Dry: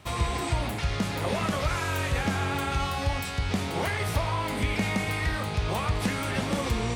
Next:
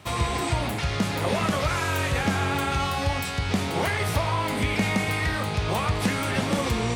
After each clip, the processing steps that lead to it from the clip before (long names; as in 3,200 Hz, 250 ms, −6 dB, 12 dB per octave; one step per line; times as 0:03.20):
high-pass filter 71 Hz
level +3.5 dB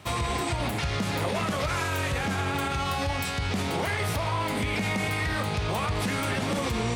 brickwall limiter −19 dBFS, peak gain reduction 8 dB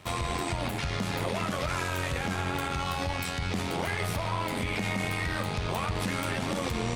amplitude modulation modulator 87 Hz, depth 45%